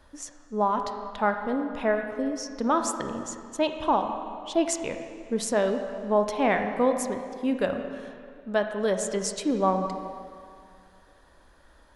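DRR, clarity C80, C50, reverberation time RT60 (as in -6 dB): 5.5 dB, 7.5 dB, 6.5 dB, 2.3 s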